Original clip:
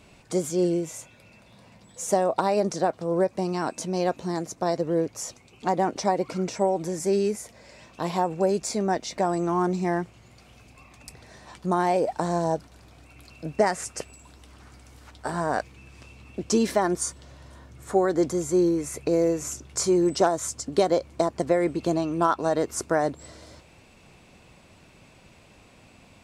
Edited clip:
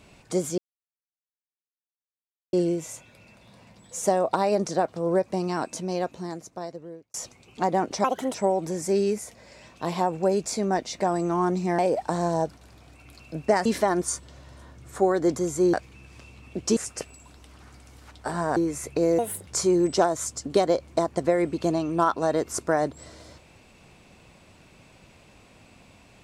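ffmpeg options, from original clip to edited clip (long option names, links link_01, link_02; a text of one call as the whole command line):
ffmpeg -i in.wav -filter_complex "[0:a]asplit=12[link_01][link_02][link_03][link_04][link_05][link_06][link_07][link_08][link_09][link_10][link_11][link_12];[link_01]atrim=end=0.58,asetpts=PTS-STARTPTS,afade=type=out:start_time=0.576:duration=0.004:curve=hsin,apad=pad_dur=1.95[link_13];[link_02]atrim=start=0.58:end=5.19,asetpts=PTS-STARTPTS,afade=type=in:duration=0.004:curve=hsin,afade=type=out:start_time=3.01:duration=1.6[link_14];[link_03]atrim=start=5.19:end=6.094,asetpts=PTS-STARTPTS,afade=type=in:duration=0.004:curve=hsin[link_15];[link_04]atrim=start=6.09:end=6.52,asetpts=PTS-STARTPTS,asetrate=62181,aresample=44100[link_16];[link_05]atrim=start=6.516:end=9.962[link_17];[link_06]atrim=start=11.888:end=13.762[link_18];[link_07]atrim=start=16.588:end=18.672[link_19];[link_08]atrim=start=15.558:end=16.592[link_20];[link_09]atrim=start=13.758:end=15.562[link_21];[link_10]atrim=start=18.668:end=19.294[link_22];[link_11]atrim=start=19.29:end=19.69,asetpts=PTS-STARTPTS,asetrate=62622,aresample=44100[link_23];[link_12]atrim=start=19.686[link_24];[link_13][link_14][link_15]concat=n=3:v=0:a=1[link_25];[link_25][link_16]acrossfade=duration=0.004:curve1=hsin:curve2=hsin[link_26];[link_26][link_17]acrossfade=duration=0.004:curve1=hsin:curve2=hsin[link_27];[link_27][link_18]acrossfade=duration=0.004:curve1=hsin:curve2=hsin[link_28];[link_28][link_19]acrossfade=duration=0.004:curve1=hsin:curve2=hsin[link_29];[link_29][link_20]acrossfade=duration=0.004:curve1=hsin:curve2=hsin[link_30];[link_30][link_21]acrossfade=duration=0.004:curve1=hsin:curve2=hsin[link_31];[link_31][link_22]acrossfade=duration=0.004:curve1=hsin:curve2=hsin[link_32];[link_32][link_23]acrossfade=duration=0.004:curve1=hsin:curve2=hsin[link_33];[link_33][link_24]acrossfade=duration=0.004:curve1=hsin:curve2=hsin" out.wav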